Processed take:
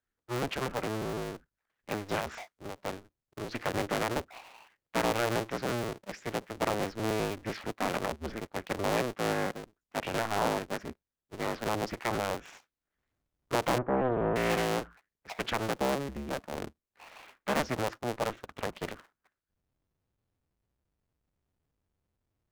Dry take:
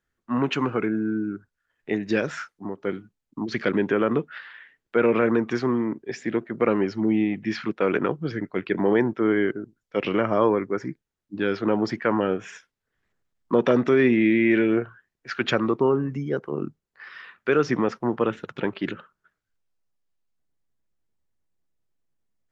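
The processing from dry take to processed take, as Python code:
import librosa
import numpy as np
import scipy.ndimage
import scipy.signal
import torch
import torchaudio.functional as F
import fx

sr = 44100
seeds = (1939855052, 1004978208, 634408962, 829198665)

y = fx.cycle_switch(x, sr, every=2, mode='inverted')
y = fx.lowpass(y, sr, hz=1300.0, slope=24, at=(13.78, 14.36))
y = fx.doppler_dist(y, sr, depth_ms=0.53)
y = y * 10.0 ** (-9.0 / 20.0)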